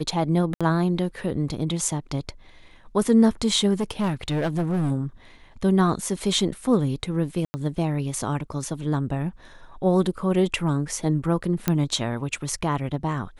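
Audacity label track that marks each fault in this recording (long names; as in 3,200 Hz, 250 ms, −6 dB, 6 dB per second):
0.540000	0.610000	drop-out 66 ms
3.800000	4.920000	clipping −20 dBFS
7.450000	7.540000	drop-out 90 ms
11.680000	11.680000	click −7 dBFS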